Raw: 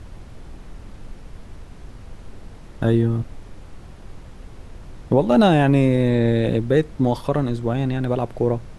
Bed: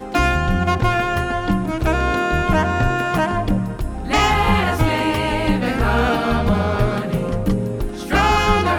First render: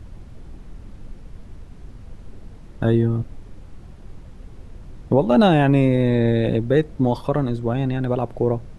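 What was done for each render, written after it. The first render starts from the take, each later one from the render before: noise reduction 6 dB, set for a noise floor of -41 dBFS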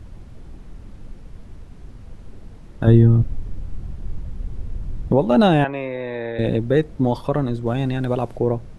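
2.87–5.12 s: bass shelf 180 Hz +12 dB; 5.64–6.39 s: three-band isolator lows -19 dB, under 490 Hz, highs -23 dB, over 3.3 kHz; 7.66–8.37 s: treble shelf 3.2 kHz +7.5 dB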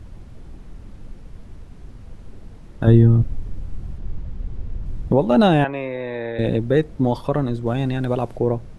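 3.98–4.86 s: distance through air 56 m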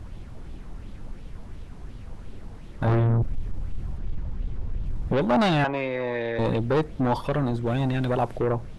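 saturation -18.5 dBFS, distortion -6 dB; sweeping bell 2.8 Hz 810–3500 Hz +7 dB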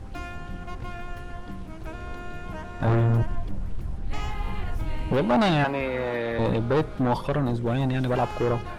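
add bed -20.5 dB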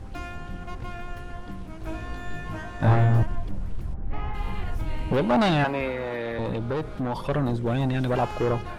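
1.81–3.23 s: flutter echo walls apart 3.2 m, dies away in 0.33 s; 3.93–4.33 s: low-pass 1.3 kHz -> 2 kHz; 5.91–7.29 s: compression 3:1, threshold -26 dBFS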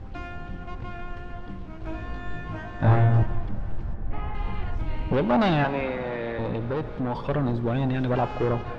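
distance through air 140 m; plate-style reverb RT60 4.9 s, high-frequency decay 0.8×, DRR 13 dB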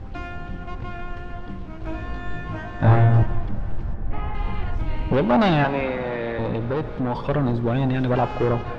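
trim +3.5 dB

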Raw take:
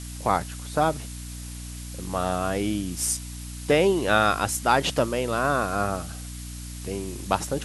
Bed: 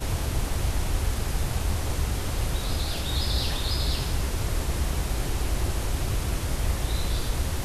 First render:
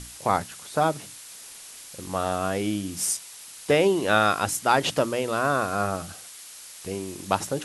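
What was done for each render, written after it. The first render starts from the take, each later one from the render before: hum notches 60/120/180/240/300 Hz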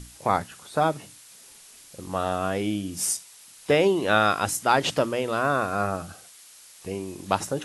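noise print and reduce 6 dB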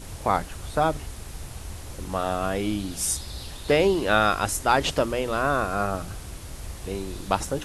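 add bed -11 dB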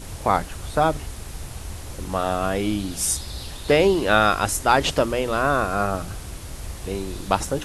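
trim +3 dB

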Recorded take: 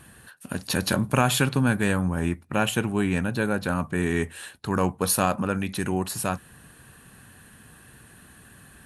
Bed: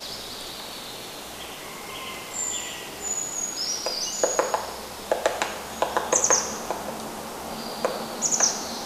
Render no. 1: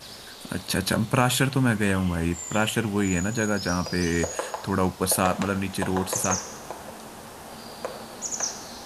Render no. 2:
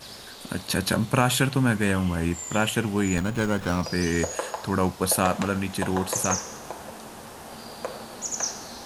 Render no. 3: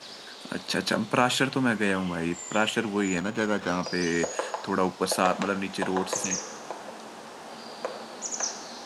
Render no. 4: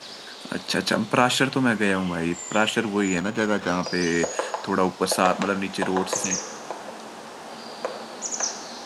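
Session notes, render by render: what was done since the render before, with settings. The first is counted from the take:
add bed -7.5 dB
3.17–3.83 s: sliding maximum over 9 samples
three-band isolator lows -21 dB, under 180 Hz, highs -19 dB, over 7.9 kHz; 6.23–6.49 s: spectral replace 310–1700 Hz
trim +3.5 dB

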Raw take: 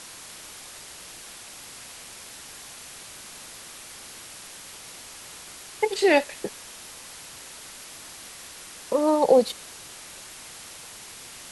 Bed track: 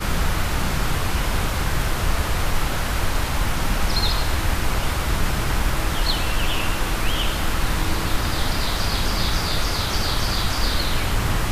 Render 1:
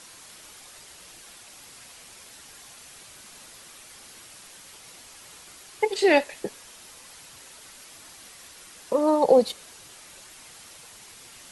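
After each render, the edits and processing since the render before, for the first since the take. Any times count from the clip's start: noise reduction 6 dB, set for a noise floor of -43 dBFS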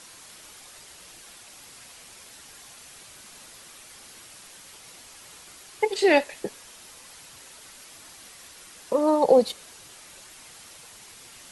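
no audible change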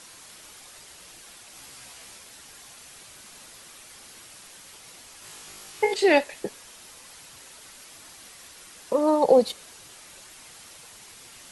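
1.53–2.18 s: doubling 15 ms -3 dB; 5.20–5.94 s: flutter echo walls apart 3.3 m, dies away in 0.4 s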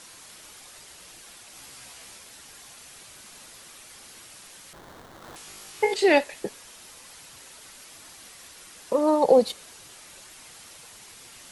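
4.73–5.36 s: sample-rate reducer 2.6 kHz, jitter 20%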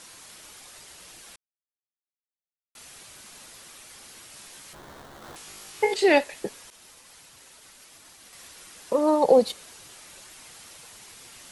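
1.36–2.75 s: mute; 4.32–5.32 s: doubling 14 ms -5 dB; 6.70–8.33 s: expander -44 dBFS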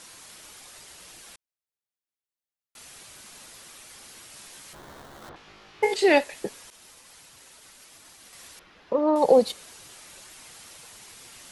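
5.29–5.83 s: distance through air 250 m; 8.59–9.16 s: distance through air 290 m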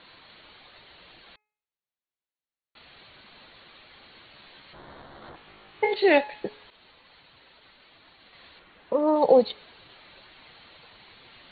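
Chebyshev low-pass 4.4 kHz, order 10; de-hum 423.2 Hz, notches 6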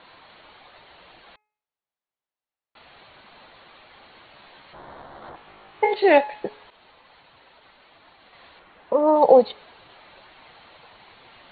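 low-pass 4.2 kHz 12 dB/octave; peaking EQ 810 Hz +7 dB 1.5 oct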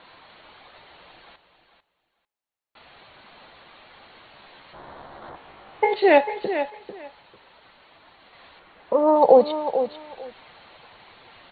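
feedback delay 446 ms, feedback 17%, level -10 dB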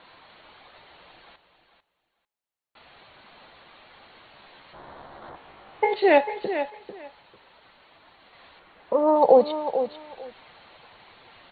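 trim -2 dB

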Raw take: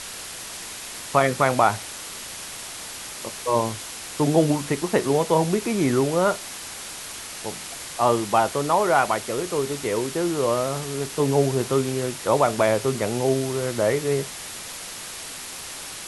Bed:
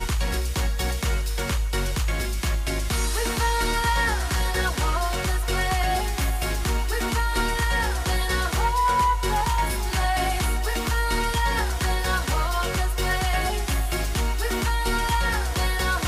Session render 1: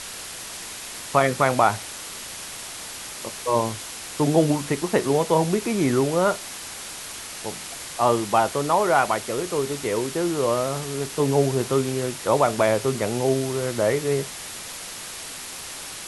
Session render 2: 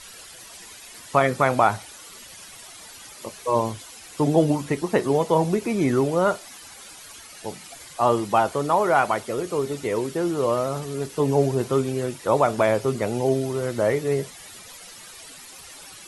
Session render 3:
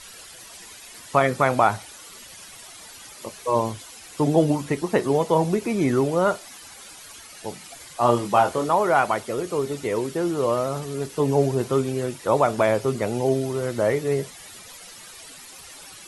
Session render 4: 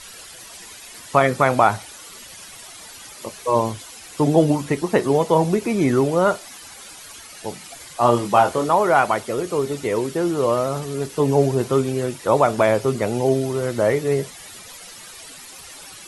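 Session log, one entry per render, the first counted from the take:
no audible change
noise reduction 12 dB, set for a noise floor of -36 dBFS
7.99–8.69 s: doubling 25 ms -5 dB
trim +3 dB; peak limiter -2 dBFS, peak gain reduction 1.5 dB

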